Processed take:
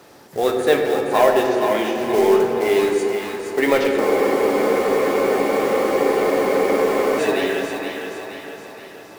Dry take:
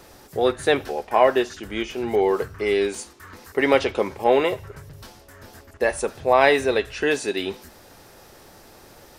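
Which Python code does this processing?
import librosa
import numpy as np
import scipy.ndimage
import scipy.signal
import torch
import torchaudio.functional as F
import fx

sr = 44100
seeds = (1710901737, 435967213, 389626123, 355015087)

p1 = scipy.signal.sosfilt(scipy.signal.butter(2, 150.0, 'highpass', fs=sr, output='sos'), x)
p2 = fx.high_shelf(p1, sr, hz=4700.0, db=-6.0)
p3 = fx.quant_float(p2, sr, bits=2)
p4 = 10.0 ** (-6.0 / 20.0) * np.tanh(p3 / 10.0 ** (-6.0 / 20.0))
p5 = p4 + fx.echo_split(p4, sr, split_hz=560.0, low_ms=103, high_ms=471, feedback_pct=52, wet_db=-6, dry=0)
p6 = fx.room_shoebox(p5, sr, seeds[0], volume_m3=190.0, walls='hard', distance_m=0.37)
p7 = fx.spec_freeze(p6, sr, seeds[1], at_s=4.01, hold_s=3.17)
y = p7 * librosa.db_to_amplitude(1.5)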